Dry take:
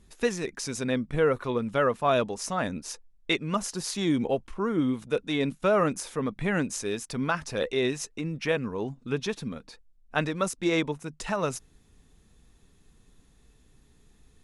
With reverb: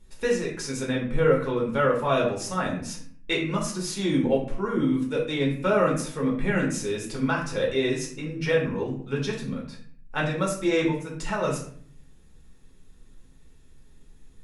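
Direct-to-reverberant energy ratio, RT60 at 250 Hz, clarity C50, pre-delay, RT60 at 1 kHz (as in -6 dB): -3.5 dB, 0.80 s, 6.0 dB, 4 ms, 0.50 s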